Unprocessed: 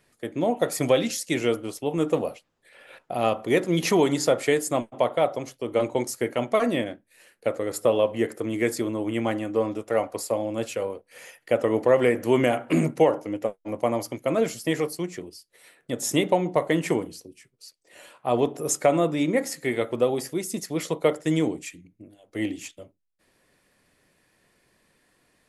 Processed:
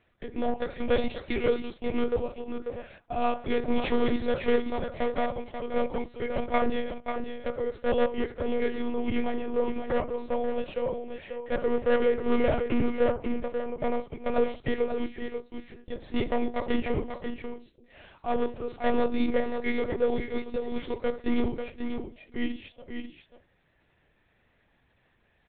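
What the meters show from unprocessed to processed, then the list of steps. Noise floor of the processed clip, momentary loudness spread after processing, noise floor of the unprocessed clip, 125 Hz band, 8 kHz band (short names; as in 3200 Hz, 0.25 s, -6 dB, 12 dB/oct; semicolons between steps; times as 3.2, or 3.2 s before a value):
-68 dBFS, 11 LU, -70 dBFS, -8.5 dB, under -40 dB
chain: hard clip -17.5 dBFS, distortion -12 dB; harmonic-percussive split percussive -6 dB; on a send: echo 0.538 s -7 dB; on the sum: monotone LPC vocoder at 8 kHz 240 Hz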